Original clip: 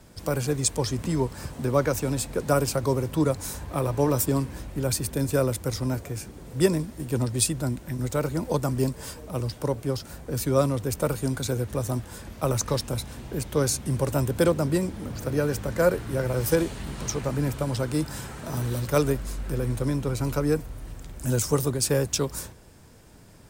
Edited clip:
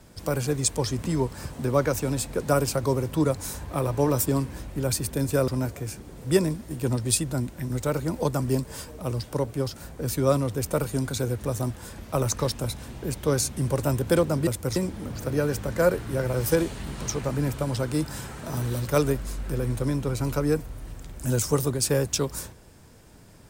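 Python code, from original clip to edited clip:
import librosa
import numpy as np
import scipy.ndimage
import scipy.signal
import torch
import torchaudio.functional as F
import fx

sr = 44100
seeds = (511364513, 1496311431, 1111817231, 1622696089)

y = fx.edit(x, sr, fx.move(start_s=5.48, length_s=0.29, to_s=14.76), tone=tone)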